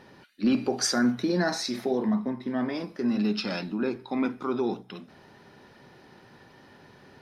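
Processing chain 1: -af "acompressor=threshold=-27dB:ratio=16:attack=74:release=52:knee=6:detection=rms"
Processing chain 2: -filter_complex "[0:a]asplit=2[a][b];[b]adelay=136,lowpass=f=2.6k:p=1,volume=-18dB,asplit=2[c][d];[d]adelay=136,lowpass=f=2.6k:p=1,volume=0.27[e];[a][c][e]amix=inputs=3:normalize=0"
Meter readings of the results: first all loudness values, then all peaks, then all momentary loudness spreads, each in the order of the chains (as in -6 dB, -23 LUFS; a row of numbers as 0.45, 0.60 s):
-30.0, -28.0 LUFS; -16.0, -14.0 dBFS; 5, 6 LU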